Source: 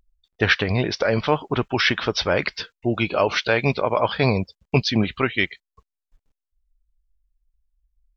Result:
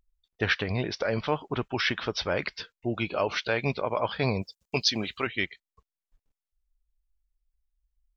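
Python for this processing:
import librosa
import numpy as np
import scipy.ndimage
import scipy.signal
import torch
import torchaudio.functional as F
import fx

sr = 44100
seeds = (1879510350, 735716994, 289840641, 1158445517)

y = fx.bass_treble(x, sr, bass_db=-8, treble_db=14, at=(4.42, 5.27))
y = y * librosa.db_to_amplitude(-7.5)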